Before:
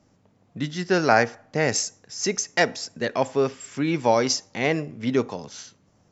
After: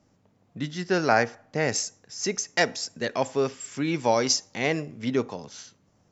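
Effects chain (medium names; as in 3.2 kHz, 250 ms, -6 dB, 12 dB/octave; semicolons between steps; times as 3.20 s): 2.57–5.09 s: treble shelf 4.7 kHz +7 dB; trim -3 dB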